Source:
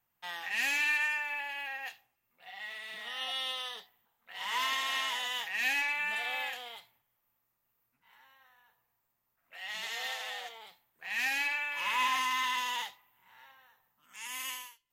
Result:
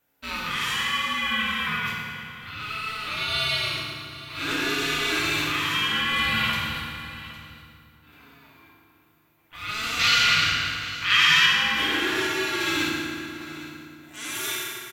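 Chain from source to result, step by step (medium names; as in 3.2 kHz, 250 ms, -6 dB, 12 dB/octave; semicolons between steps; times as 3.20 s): ring modulator 650 Hz; in parallel at +2.5 dB: compressor with a negative ratio -38 dBFS, ratio -0.5; 9.99–11.46 s: on the sum: high-order bell 3 kHz +10 dB 2.5 oct; on a send: delay 809 ms -16.5 dB; on the sum: FDN reverb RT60 2.4 s, low-frequency decay 1.3×, high-frequency decay 0.7×, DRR -4 dB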